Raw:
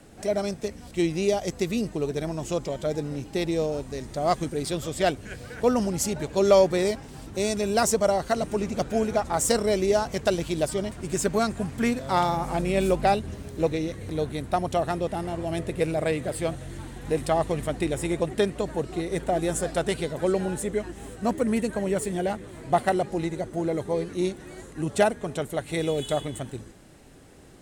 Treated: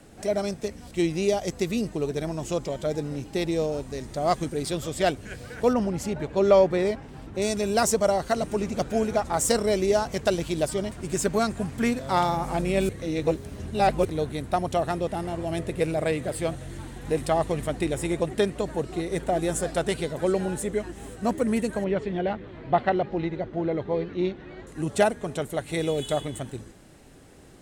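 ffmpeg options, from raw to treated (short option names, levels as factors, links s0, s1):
-filter_complex "[0:a]asettb=1/sr,asplit=3[s0][s1][s2];[s0]atrim=end=5.734[s3];[s1]atrim=start=5.73:end=7.42,asetpts=PTS-STARTPTS,afade=t=in:d=0.004:c=qsin,afade=t=out:st=1.686:d=0.004:c=qsin,bass=f=250:g=0,treble=f=4000:g=-12[s4];[s2]atrim=start=7.416[s5];[s3][s4]acrossfade=d=0.004:c1=hsin:c2=qsin[s6];[s6][s5]acrossfade=d=0.004:c1=qsin:c2=hsin,asettb=1/sr,asplit=3[s7][s8][s9];[s7]atrim=end=21.844[s10];[s8]atrim=start=21.84:end=24.67,asetpts=PTS-STARTPTS,afade=t=in:d=0.004:c=qsin,afade=t=out:st=2.826:d=0.004:c=qsin,lowpass=f=3800:w=0.5412,lowpass=f=3800:w=1.3066[s11];[s9]atrim=start=24.666[s12];[s10][s11]acrossfade=d=0.004:c1=hsin:c2=qsin[s13];[s13][s12]acrossfade=d=0.004:c1=qsin:c2=hsin,asplit=3[s14][s15][s16];[s14]atrim=end=12.892[s17];[s15]atrim=start=12.888:end=14.052,asetpts=PTS-STARTPTS,areverse[s18];[s16]atrim=start=14.048[s19];[s17][s18]acrossfade=d=0.004:c1=hsin:c2=hsin[s20];[s20][s19]acrossfade=d=0.004:c1=hsin:c2=hsin"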